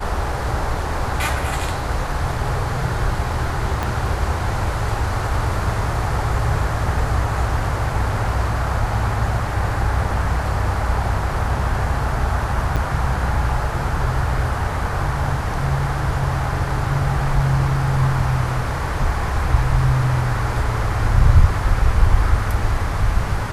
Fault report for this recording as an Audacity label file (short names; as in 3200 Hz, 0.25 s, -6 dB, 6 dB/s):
3.830000	3.830000	pop
12.760000	12.770000	gap 7.3 ms